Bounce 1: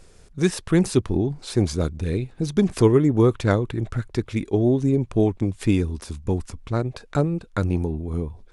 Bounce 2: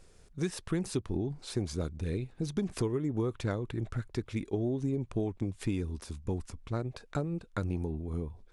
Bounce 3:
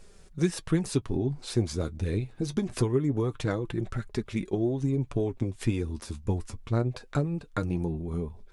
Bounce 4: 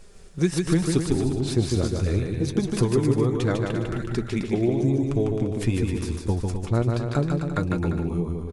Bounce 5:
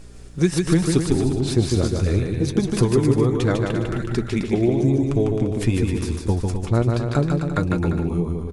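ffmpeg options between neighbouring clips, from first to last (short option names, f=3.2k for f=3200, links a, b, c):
-af "acompressor=threshold=-19dB:ratio=10,volume=-8dB"
-af "flanger=delay=4.7:depth=5:regen=43:speed=0.24:shape=triangular,volume=8.5dB"
-af "aecho=1:1:150|262.5|346.9|410.2|457.6:0.631|0.398|0.251|0.158|0.1,volume=3.5dB"
-af "aeval=exprs='val(0)+0.00501*(sin(2*PI*60*n/s)+sin(2*PI*2*60*n/s)/2+sin(2*PI*3*60*n/s)/3+sin(2*PI*4*60*n/s)/4+sin(2*PI*5*60*n/s)/5)':c=same,volume=3.5dB"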